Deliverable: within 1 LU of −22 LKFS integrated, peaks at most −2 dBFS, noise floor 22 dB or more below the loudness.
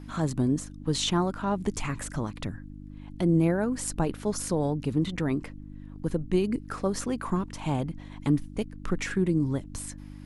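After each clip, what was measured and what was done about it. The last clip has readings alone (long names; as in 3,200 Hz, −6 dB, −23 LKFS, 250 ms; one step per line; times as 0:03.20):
mains hum 50 Hz; hum harmonics up to 300 Hz; level of the hum −41 dBFS; integrated loudness −29.0 LKFS; sample peak −12.0 dBFS; target loudness −22.0 LKFS
→ hum removal 50 Hz, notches 6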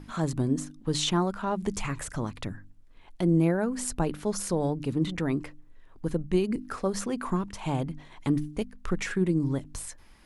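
mains hum none found; integrated loudness −29.5 LKFS; sample peak −12.0 dBFS; target loudness −22.0 LKFS
→ level +7.5 dB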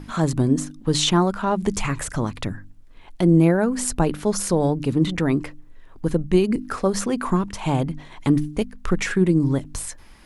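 integrated loudness −22.0 LKFS; sample peak −4.5 dBFS; background noise floor −45 dBFS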